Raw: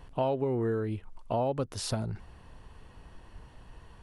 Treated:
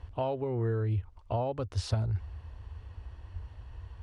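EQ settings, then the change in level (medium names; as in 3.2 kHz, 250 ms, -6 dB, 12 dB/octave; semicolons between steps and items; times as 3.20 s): high-pass 45 Hz; low-pass 6 kHz 12 dB/octave; resonant low shelf 120 Hz +10 dB, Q 3; -2.5 dB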